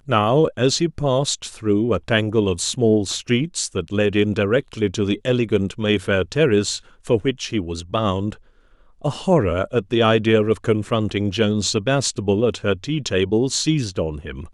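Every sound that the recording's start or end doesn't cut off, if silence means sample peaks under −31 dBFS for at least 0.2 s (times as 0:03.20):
0:07.07–0:08.33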